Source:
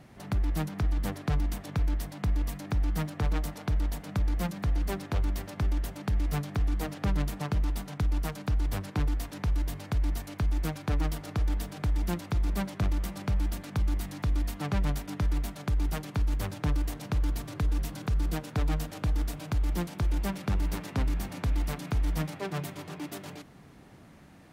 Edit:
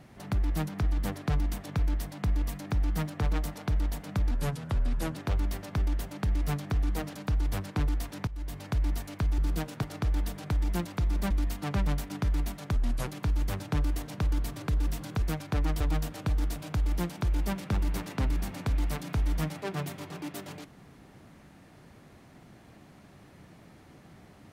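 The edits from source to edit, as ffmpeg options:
-filter_complex "[0:a]asplit=12[a][b][c][d][e][f][g][h][i][j][k][l];[a]atrim=end=4.314[m];[b]atrim=start=4.31:end=5.01,asetpts=PTS-STARTPTS,asetrate=36162,aresample=44100,atrim=end_sample=37646,asetpts=PTS-STARTPTS[n];[c]atrim=start=5.006:end=7.002[o];[d]atrim=start=8.348:end=9.47,asetpts=PTS-STARTPTS,afade=t=out:st=1.118:d=0.004:c=hsin:silence=0.112202[p];[e]atrim=start=9.47:end=10.582,asetpts=PTS-STARTPTS,afade=t=in:d=0.39:silence=0.112202[q];[f]atrim=start=18.138:end=18.582[r];[g]atrim=start=11.158:end=12.642[s];[h]atrim=start=14.278:end=15.734[t];[i]atrim=start=15.73:end=15.99,asetpts=PTS-STARTPTS,asetrate=35721,aresample=44100[u];[j]atrim=start=15.986:end=18.142[v];[k]atrim=start=10.578:end=11.162[w];[l]atrim=start=18.578[x];[m][n]acrossfade=d=0.004:c1=hsin:c2=hsin[y];[y][o]acrossfade=d=0.004:c1=hsin:c2=hsin[z];[p][q]concat=n=2:v=0:a=1[aa];[z][aa]acrossfade=d=0.004:c1=hsin:c2=hsin[ab];[ab][r]acrossfade=d=0.004:c1=hsin:c2=hsin[ac];[ac][s]acrossfade=d=0.004:c1=hsin:c2=hsin[ad];[ad][t]acrossfade=d=0.004:c1=hsin:c2=hsin[ae];[ae][u]acrossfade=d=0.004:c1=hsin:c2=hsin[af];[af][v]acrossfade=d=0.004:c1=hsin:c2=hsin[ag];[ag][w]acrossfade=d=0.004:c1=hsin:c2=hsin[ah];[ah][x]acrossfade=d=0.004:c1=hsin:c2=hsin"

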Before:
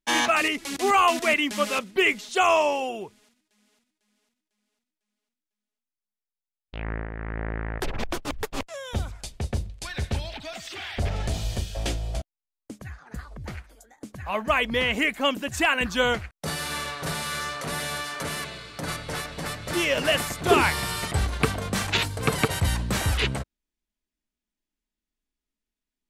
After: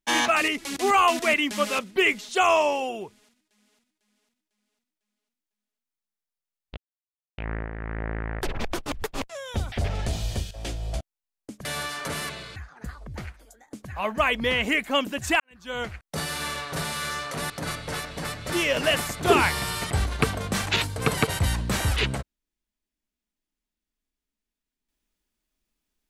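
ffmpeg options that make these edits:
-filter_complex "[0:a]asplit=8[a][b][c][d][e][f][g][h];[a]atrim=end=6.77,asetpts=PTS-STARTPTS,afade=t=out:st=6.766:d=0.004:c=hsin,apad=pad_dur=0.61[i];[b]atrim=start=6.77:end=9.112,asetpts=PTS-STARTPTS,afade=t=in:d=0.004:c=hsin[j];[c]atrim=start=10.928:end=11.72,asetpts=PTS-STARTPTS,afade=t=out:st=0.788:d=0.004:c=hsin:silence=0.251189[k];[d]atrim=start=11.72:end=12.862,asetpts=PTS-STARTPTS,afade=t=in:d=0.38:silence=0.251189[l];[e]atrim=start=17.798:end=18.712[m];[f]atrim=start=12.858:end=15.7,asetpts=PTS-STARTPTS,afade=t=out:st=2.838:d=0.004:c=hsin[n];[g]atrim=start=15.7:end=17.802,asetpts=PTS-STARTPTS,afade=t=in:d=0.6:c=qua[o];[h]atrim=start=18.708[p];[i][j]concat=n=2:v=0:a=1[q];[k][l]concat=n=2:v=0:a=1[r];[q][r]acrossfade=d=0.004:c1=hsin:c2=hsin[s];[s][m]acrossfade=d=0.004:c1=hsin:c2=hsin[t];[n][o]concat=n=2:v=0:a=1[u];[t][u]acrossfade=d=0.004:c1=hsin:c2=hsin[v];[v][p]acrossfade=d=0.004:c1=hsin:c2=hsin"

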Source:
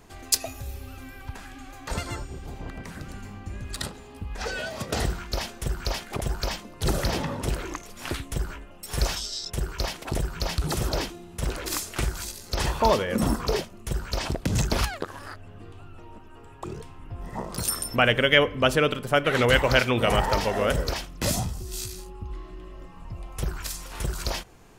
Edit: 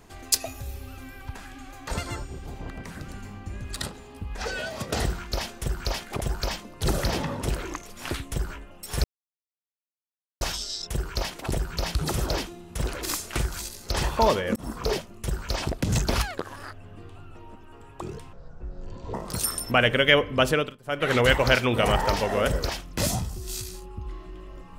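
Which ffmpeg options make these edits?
-filter_complex "[0:a]asplit=7[a][b][c][d][e][f][g];[a]atrim=end=9.04,asetpts=PTS-STARTPTS,afade=t=out:st=9.036:d=0.004:c=hsin,apad=pad_dur=1.37[h];[b]atrim=start=9.04:end=13.19,asetpts=PTS-STARTPTS,afade=t=in:d=0.004:c=hsin,afade=t=out:st=4.146:d=0.004:c=hsin[i];[c]atrim=start=13.19:end=16.964,asetpts=PTS-STARTPTS,afade=t=in:d=0.36[j];[d]atrim=start=16.96:end=17.38,asetpts=PTS-STARTPTS,asetrate=22932,aresample=44100,atrim=end_sample=35619,asetpts=PTS-STARTPTS[k];[e]atrim=start=17.376:end=19.01,asetpts=PTS-STARTPTS,afade=t=out:st=1.374:d=0.26:silence=0.1[l];[f]atrim=start=19.01:end=19.07,asetpts=PTS-STARTPTS,volume=-20dB[m];[g]atrim=start=19.07,asetpts=PTS-STARTPTS,afade=t=in:d=0.26:silence=0.1[n];[h][i][j]concat=n=3:v=0:a=1[o];[o][k]acrossfade=d=0.004:c1=hsin:c2=hsin[p];[l][m][n]concat=n=3:v=0:a=1[q];[p][q]acrossfade=d=0.004:c1=hsin:c2=hsin"

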